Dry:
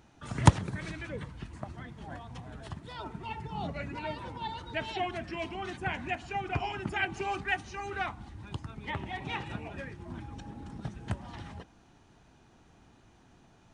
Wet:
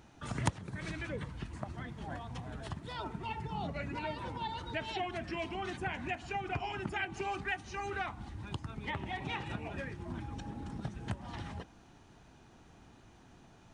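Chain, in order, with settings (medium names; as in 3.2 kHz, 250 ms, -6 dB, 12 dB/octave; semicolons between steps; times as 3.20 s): compression 2.5:1, threshold -37 dBFS, peak gain reduction 16.5 dB; trim +1.5 dB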